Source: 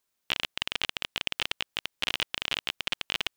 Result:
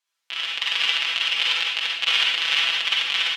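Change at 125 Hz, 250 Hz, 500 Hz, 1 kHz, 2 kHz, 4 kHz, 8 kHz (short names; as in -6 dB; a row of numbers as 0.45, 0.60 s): under -10 dB, n/a, 0.0 dB, +7.0 dB, +10.5 dB, +11.0 dB, +6.0 dB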